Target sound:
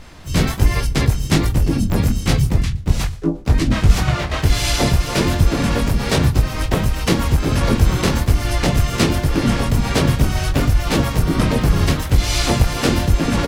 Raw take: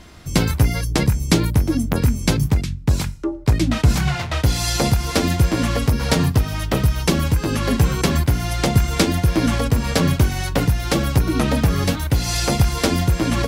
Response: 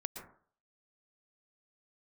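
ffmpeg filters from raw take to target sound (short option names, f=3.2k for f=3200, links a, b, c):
-filter_complex "[0:a]acontrast=78,aecho=1:1:120|240|360:0.0794|0.0381|0.0183,flanger=delay=19.5:depth=3.2:speed=1.3,asplit=4[a][b][c][d];[b]asetrate=22050,aresample=44100,atempo=2,volume=-1dB[e];[c]asetrate=37084,aresample=44100,atempo=1.18921,volume=-1dB[f];[d]asetrate=55563,aresample=44100,atempo=0.793701,volume=-11dB[g];[a][e][f][g]amix=inputs=4:normalize=0,volume=-5dB"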